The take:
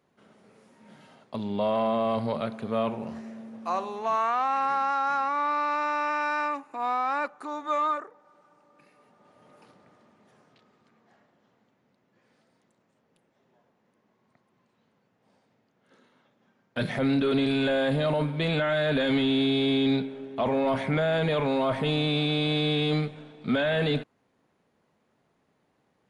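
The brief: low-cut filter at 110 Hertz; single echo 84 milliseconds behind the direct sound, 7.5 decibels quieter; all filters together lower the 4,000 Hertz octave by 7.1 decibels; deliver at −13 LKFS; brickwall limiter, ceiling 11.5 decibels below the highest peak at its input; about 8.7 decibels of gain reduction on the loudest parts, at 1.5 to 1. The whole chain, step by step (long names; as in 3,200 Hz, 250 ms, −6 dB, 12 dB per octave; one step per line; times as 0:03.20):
high-pass filter 110 Hz
parametric band 4,000 Hz −8.5 dB
downward compressor 1.5 to 1, threshold −47 dBFS
brickwall limiter −35.5 dBFS
single-tap delay 84 ms −7.5 dB
level +30 dB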